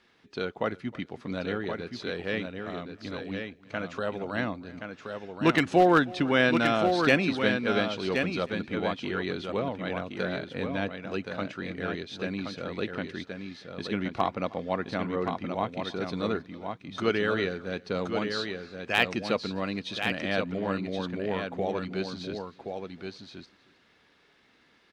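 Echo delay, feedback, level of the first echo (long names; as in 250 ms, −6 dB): 314 ms, repeats not evenly spaced, −22.0 dB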